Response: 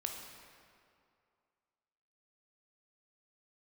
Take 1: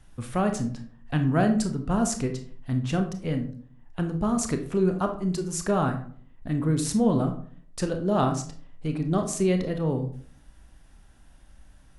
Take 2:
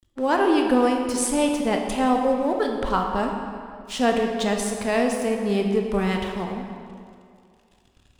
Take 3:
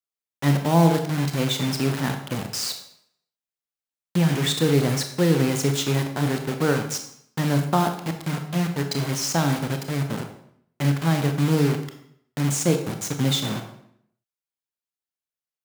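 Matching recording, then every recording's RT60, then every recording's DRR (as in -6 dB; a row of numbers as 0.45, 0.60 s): 2; 0.50, 2.4, 0.65 s; 5.0, 2.0, 5.5 dB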